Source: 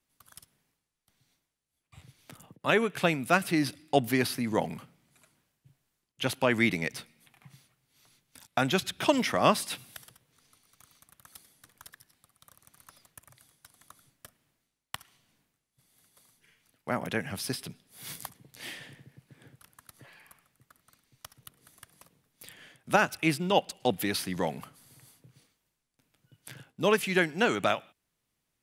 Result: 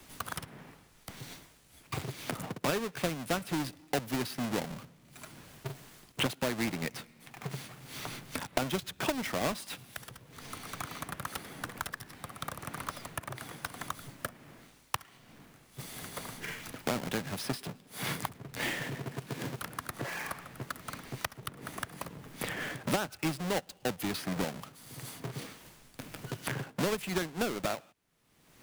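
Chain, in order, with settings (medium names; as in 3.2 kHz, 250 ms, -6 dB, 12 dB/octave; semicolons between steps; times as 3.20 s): square wave that keeps the level; three bands compressed up and down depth 100%; trim -8 dB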